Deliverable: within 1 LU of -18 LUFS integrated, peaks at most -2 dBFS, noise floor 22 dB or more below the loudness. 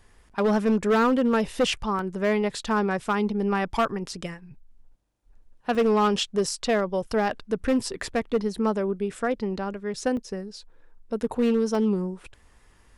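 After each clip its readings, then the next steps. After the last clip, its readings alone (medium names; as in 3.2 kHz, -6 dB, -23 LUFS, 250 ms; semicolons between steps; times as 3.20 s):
clipped samples 1.8%; clipping level -16.5 dBFS; dropouts 4; longest dropout 1.3 ms; loudness -25.5 LUFS; peak level -16.5 dBFS; loudness target -18.0 LUFS
-> clip repair -16.5 dBFS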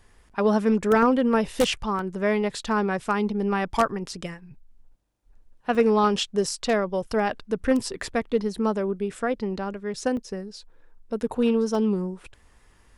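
clipped samples 0.0%; dropouts 4; longest dropout 1.3 ms
-> interpolate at 1.99/5.75/10.17/11.75 s, 1.3 ms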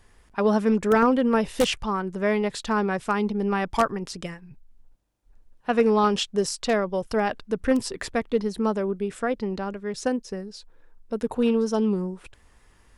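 dropouts 0; loudness -25.0 LUFS; peak level -7.5 dBFS; loudness target -18.0 LUFS
-> trim +7 dB; peak limiter -2 dBFS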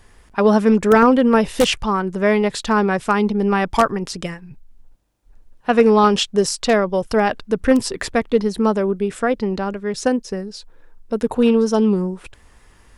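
loudness -18.0 LUFS; peak level -2.0 dBFS; noise floor -51 dBFS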